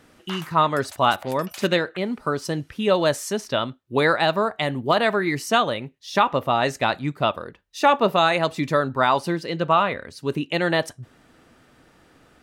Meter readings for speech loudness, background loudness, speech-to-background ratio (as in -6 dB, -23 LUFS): -22.5 LUFS, -41.5 LUFS, 19.0 dB